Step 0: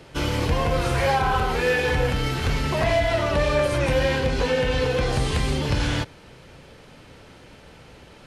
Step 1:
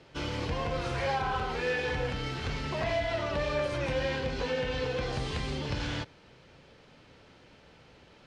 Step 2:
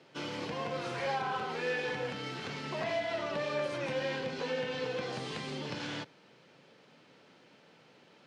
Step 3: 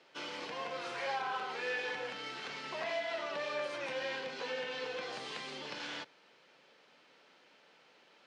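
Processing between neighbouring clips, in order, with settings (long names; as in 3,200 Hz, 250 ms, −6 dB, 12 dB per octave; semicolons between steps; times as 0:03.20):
Chebyshev low-pass filter 5,300 Hz, order 2; low-shelf EQ 72 Hz −5.5 dB; level −8 dB
high-pass filter 150 Hz 24 dB per octave; level −3 dB
meter weighting curve A; level −2 dB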